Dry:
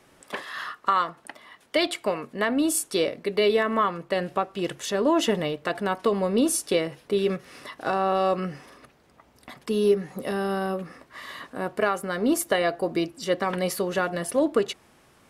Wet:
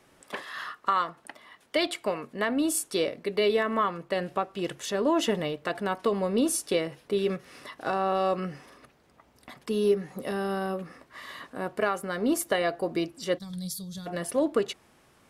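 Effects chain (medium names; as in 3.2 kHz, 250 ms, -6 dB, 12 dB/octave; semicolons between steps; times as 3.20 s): time-frequency box 13.38–14.06 s, 200–3200 Hz -25 dB; trim -3 dB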